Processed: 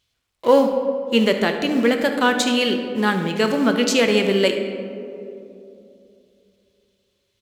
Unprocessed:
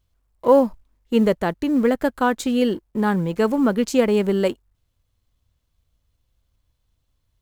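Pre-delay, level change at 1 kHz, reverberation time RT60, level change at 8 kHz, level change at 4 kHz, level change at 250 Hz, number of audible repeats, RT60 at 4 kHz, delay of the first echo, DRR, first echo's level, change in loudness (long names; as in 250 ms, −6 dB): 4 ms, +1.0 dB, 2.8 s, +7.5 dB, +12.0 dB, 0.0 dB, 1, 1.1 s, 74 ms, 4.5 dB, −15.0 dB, +1.5 dB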